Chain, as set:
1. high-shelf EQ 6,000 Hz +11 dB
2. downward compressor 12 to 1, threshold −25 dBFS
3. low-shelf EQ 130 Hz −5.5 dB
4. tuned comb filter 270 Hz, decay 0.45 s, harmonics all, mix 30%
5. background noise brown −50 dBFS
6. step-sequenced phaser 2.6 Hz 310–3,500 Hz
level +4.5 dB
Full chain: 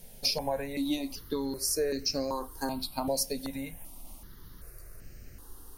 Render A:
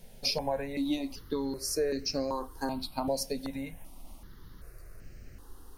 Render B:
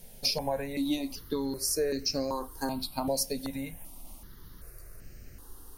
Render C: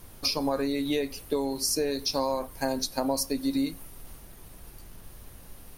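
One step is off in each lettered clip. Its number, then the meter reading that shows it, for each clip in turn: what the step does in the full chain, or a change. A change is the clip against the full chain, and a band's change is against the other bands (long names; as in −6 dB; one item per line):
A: 1, 8 kHz band −5.0 dB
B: 3, 125 Hz band +2.0 dB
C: 6, change in momentary loudness spread −1 LU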